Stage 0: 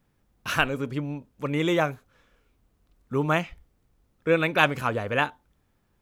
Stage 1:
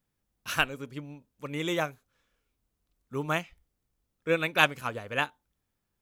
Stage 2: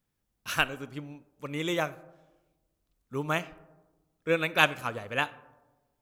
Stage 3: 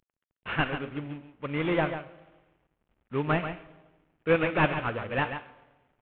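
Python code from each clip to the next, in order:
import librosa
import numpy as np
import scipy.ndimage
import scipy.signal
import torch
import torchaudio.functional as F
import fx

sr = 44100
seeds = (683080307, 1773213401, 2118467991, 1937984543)

y1 = fx.high_shelf(x, sr, hz=3100.0, db=9.5)
y1 = fx.upward_expand(y1, sr, threshold_db=-34.0, expansion=1.5)
y1 = y1 * librosa.db_to_amplitude(-3.5)
y2 = fx.rev_freeverb(y1, sr, rt60_s=1.2, hf_ratio=0.3, predelay_ms=5, drr_db=17.5)
y3 = fx.cvsd(y2, sr, bps=16000)
y3 = y3 + 10.0 ** (-9.0 / 20.0) * np.pad(y3, (int(139 * sr / 1000.0), 0))[:len(y3)]
y3 = y3 * librosa.db_to_amplitude(4.0)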